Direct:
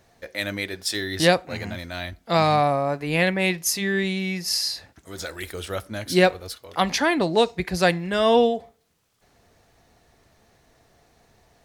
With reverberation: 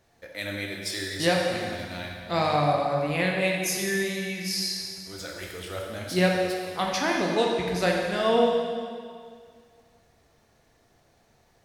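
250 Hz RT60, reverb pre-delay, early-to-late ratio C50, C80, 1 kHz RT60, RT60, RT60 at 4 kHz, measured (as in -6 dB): 2.1 s, 7 ms, 1.5 dB, 3.0 dB, 2.1 s, 2.1 s, 1.9 s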